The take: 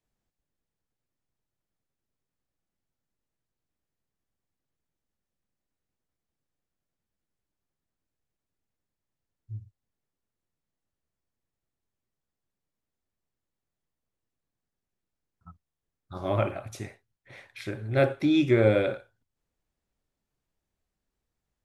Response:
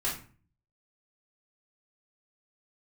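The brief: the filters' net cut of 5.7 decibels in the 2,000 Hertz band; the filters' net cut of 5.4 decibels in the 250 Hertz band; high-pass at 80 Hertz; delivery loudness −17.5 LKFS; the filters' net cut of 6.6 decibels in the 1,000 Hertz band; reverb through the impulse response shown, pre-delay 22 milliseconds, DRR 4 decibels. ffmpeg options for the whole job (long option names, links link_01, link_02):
-filter_complex "[0:a]highpass=80,equalizer=frequency=250:width_type=o:gain=-7,equalizer=frequency=1000:width_type=o:gain=-8.5,equalizer=frequency=2000:width_type=o:gain=-4.5,asplit=2[link_01][link_02];[1:a]atrim=start_sample=2205,adelay=22[link_03];[link_02][link_03]afir=irnorm=-1:irlink=0,volume=-10.5dB[link_04];[link_01][link_04]amix=inputs=2:normalize=0,volume=11dB"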